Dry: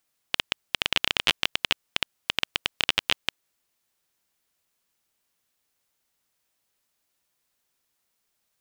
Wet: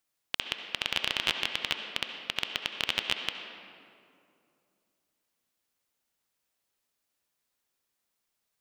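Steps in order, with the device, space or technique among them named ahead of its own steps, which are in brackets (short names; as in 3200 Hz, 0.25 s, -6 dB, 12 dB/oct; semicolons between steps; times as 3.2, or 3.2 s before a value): filtered reverb send (on a send: HPF 190 Hz 24 dB/oct + LPF 5100 Hz 12 dB/oct + reverb RT60 2.5 s, pre-delay 62 ms, DRR 5 dB); on the sum: gain -5.5 dB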